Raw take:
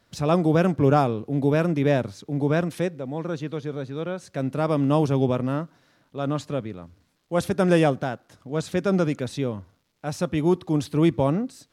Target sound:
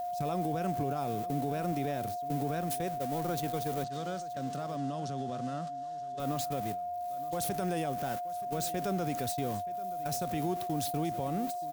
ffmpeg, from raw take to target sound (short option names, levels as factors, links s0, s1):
-filter_complex "[0:a]aeval=exprs='val(0)+0.5*0.0211*sgn(val(0))':c=same,agate=range=0.0562:threshold=0.0355:ratio=16:detection=peak,aemphasis=mode=production:type=50fm,acompressor=threshold=0.0178:ratio=2.5,alimiter=level_in=1.19:limit=0.0631:level=0:latency=1:release=34,volume=0.841,aeval=exprs='val(0)+0.0224*sin(2*PI*710*n/s)':c=same,asettb=1/sr,asplit=3[s0][s1][s2];[s0]atrim=end=3.844[s3];[s1]atrim=start=3.84:end=6.2,asetpts=PTS-STARTPTS,afade=t=in:d=0.004:c=qsin,afade=t=out:st=2.356:d=0.004:c=qsin,highpass=140,equalizer=f=310:t=q:w=4:g=-5,equalizer=f=460:t=q:w=4:g=-7,equalizer=f=890:t=q:w=4:g=-7,equalizer=f=2300:t=q:w=4:g=-9,lowpass=f=7400:w=0.5412,lowpass=f=7400:w=1.3066[s4];[s2]atrim=start=6.196[s5];[s3][s4]acrossfade=d=0.004:c1=hsin:c2=qsin[s6];[s6][s5]acrossfade=d=0.004:c1=qsin:c2=hsin,aecho=1:1:926:0.133"